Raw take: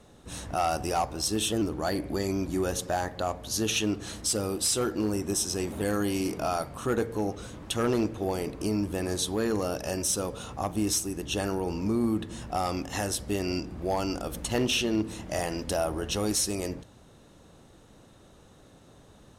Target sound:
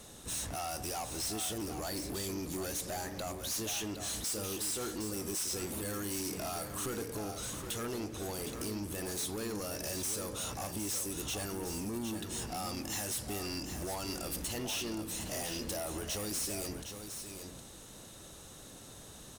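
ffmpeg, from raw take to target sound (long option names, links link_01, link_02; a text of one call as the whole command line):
ffmpeg -i in.wav -af "acompressor=threshold=-34dB:ratio=3,crystalizer=i=4:c=0,asoftclip=type=tanh:threshold=-34.5dB,aecho=1:1:763:0.398" out.wav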